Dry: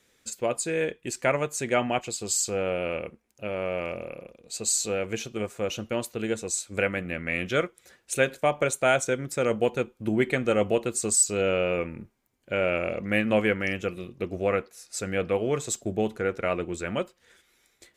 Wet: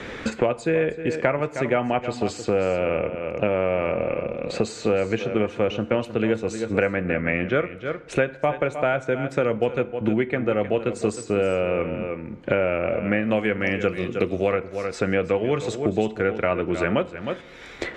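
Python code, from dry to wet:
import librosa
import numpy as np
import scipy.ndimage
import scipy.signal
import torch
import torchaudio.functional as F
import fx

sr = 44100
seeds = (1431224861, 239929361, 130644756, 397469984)

y = fx.lowpass(x, sr, hz=fx.steps((0.0, 2100.0), (13.23, 6500.0), (14.51, 3100.0)), slope=12)
y = fx.rider(y, sr, range_db=4, speed_s=0.5)
y = y + 10.0 ** (-13.5 / 20.0) * np.pad(y, (int(311 * sr / 1000.0), 0))[:len(y)]
y = fx.rev_fdn(y, sr, rt60_s=0.79, lf_ratio=1.0, hf_ratio=0.7, size_ms=20.0, drr_db=16.5)
y = fx.band_squash(y, sr, depth_pct=100)
y = y * 10.0 ** (4.0 / 20.0)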